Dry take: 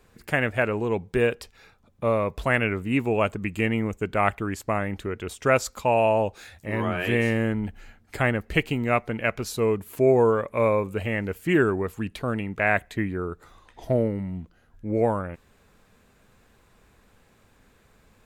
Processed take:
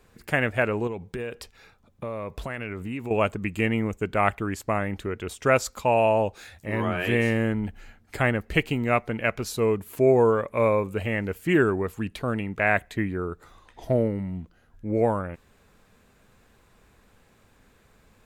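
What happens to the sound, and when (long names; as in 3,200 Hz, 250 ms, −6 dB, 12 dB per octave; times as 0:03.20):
0:00.87–0:03.11: downward compressor, threshold −29 dBFS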